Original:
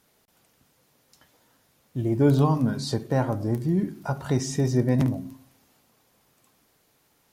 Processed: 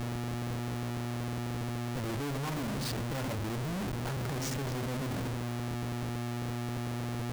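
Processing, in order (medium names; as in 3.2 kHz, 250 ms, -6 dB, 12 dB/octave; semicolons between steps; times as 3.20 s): mains buzz 120 Hz, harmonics 35, -37 dBFS -7 dB/octave; crackle 350 per s -41 dBFS; Schmitt trigger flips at -36.5 dBFS; trim -7.5 dB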